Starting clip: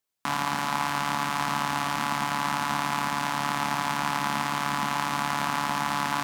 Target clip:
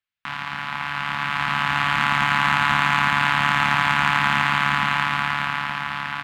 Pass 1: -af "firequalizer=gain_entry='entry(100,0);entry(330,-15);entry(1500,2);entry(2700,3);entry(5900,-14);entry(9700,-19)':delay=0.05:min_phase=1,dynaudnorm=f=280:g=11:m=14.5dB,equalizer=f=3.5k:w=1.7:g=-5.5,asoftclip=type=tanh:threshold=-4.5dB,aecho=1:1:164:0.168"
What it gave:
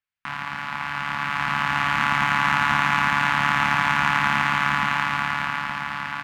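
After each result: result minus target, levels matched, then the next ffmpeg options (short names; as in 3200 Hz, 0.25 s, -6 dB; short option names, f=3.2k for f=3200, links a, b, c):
echo 0.115 s early; 4000 Hz band -2.5 dB
-af "firequalizer=gain_entry='entry(100,0);entry(330,-15);entry(1500,2);entry(2700,3);entry(5900,-14);entry(9700,-19)':delay=0.05:min_phase=1,dynaudnorm=f=280:g=11:m=14.5dB,equalizer=f=3.5k:w=1.7:g=-5.5,asoftclip=type=tanh:threshold=-4.5dB,aecho=1:1:279:0.168"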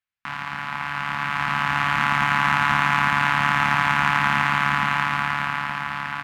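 4000 Hz band -3.5 dB
-af "firequalizer=gain_entry='entry(100,0);entry(330,-15);entry(1500,2);entry(2700,3);entry(5900,-14);entry(9700,-19)':delay=0.05:min_phase=1,dynaudnorm=f=280:g=11:m=14.5dB,asoftclip=type=tanh:threshold=-4.5dB,aecho=1:1:279:0.168"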